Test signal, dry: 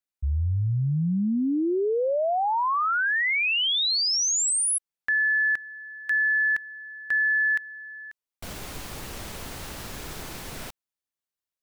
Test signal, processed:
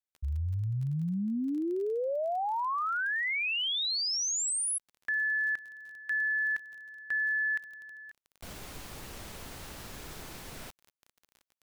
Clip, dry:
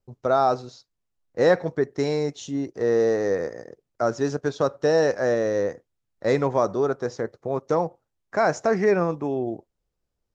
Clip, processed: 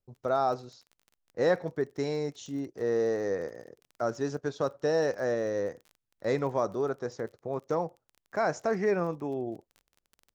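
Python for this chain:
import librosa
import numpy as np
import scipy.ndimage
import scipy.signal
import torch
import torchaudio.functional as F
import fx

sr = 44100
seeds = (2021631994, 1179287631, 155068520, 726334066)

y = fx.dmg_crackle(x, sr, seeds[0], per_s=26.0, level_db=-35.0)
y = y * 10.0 ** (-7.0 / 20.0)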